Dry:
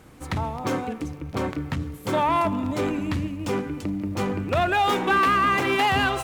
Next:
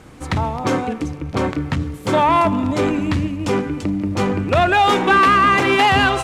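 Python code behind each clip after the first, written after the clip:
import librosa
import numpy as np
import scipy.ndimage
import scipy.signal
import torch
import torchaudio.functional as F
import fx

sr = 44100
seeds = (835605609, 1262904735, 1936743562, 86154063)

y = scipy.signal.sosfilt(scipy.signal.butter(2, 9500.0, 'lowpass', fs=sr, output='sos'), x)
y = F.gain(torch.from_numpy(y), 7.0).numpy()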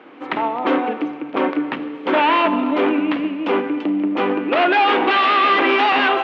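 y = 10.0 ** (-13.0 / 20.0) * (np.abs((x / 10.0 ** (-13.0 / 20.0) + 3.0) % 4.0 - 2.0) - 1.0)
y = scipy.signal.sosfilt(scipy.signal.ellip(3, 1.0, 70, [280.0, 3000.0], 'bandpass', fs=sr, output='sos'), y)
y = fx.rev_schroeder(y, sr, rt60_s=2.0, comb_ms=30, drr_db=13.0)
y = F.gain(torch.from_numpy(y), 3.0).numpy()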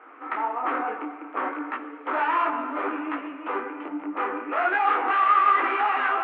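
y = 10.0 ** (-15.5 / 20.0) * np.tanh(x / 10.0 ** (-15.5 / 20.0))
y = fx.cabinet(y, sr, low_hz=350.0, low_slope=24, high_hz=2200.0, hz=(380.0, 550.0, 1300.0), db=(-6, -7, 8))
y = fx.detune_double(y, sr, cents=43)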